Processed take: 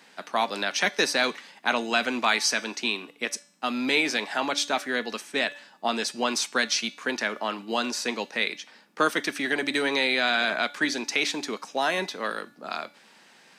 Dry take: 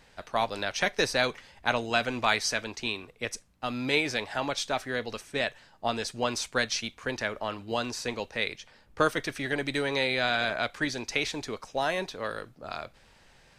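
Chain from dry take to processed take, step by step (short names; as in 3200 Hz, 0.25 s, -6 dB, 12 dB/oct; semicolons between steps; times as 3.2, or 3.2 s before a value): steep high-pass 190 Hz 36 dB/oct; in parallel at -0.5 dB: limiter -19 dBFS, peak gain reduction 9 dB; on the sum: bell 530 Hz -5 dB 0.84 oct; de-hum 288.2 Hz, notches 31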